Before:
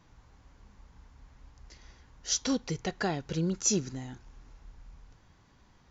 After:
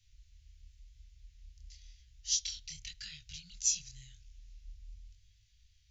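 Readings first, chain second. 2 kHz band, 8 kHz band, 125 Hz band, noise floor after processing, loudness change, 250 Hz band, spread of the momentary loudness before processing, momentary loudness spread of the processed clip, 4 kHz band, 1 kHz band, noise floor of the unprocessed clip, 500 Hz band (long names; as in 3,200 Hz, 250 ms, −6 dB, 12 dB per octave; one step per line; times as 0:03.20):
−12.5 dB, can't be measured, −18.0 dB, −67 dBFS, −4.0 dB, below −30 dB, 16 LU, 23 LU, −1.0 dB, below −35 dB, −62 dBFS, below −40 dB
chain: inverse Chebyshev band-stop filter 310–740 Hz, stop band 80 dB
chorus effect 0.93 Hz, delay 19 ms, depth 7.6 ms
level +2 dB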